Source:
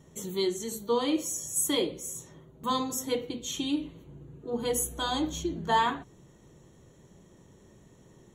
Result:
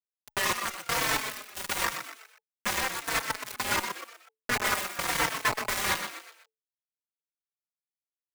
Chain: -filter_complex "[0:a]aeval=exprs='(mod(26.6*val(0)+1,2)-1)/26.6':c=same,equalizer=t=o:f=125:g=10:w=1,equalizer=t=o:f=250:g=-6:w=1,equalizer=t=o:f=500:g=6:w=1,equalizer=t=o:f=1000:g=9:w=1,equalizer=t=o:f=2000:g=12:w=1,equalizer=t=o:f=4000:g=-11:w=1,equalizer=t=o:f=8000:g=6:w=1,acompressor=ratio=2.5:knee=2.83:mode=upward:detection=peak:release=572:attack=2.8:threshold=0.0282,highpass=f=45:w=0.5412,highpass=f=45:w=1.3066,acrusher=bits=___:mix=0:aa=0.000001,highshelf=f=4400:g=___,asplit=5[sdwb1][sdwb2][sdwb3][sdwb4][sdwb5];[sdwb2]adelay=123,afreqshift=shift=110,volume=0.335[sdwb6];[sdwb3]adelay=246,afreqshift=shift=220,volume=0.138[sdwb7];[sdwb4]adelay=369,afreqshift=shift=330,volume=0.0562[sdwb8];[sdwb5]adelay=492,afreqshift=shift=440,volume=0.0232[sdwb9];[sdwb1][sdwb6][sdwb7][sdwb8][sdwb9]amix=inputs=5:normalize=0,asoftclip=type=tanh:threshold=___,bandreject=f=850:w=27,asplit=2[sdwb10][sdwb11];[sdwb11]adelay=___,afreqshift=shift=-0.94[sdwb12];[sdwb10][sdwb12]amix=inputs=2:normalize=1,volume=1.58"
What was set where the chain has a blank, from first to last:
3, -2.5, 0.158, 4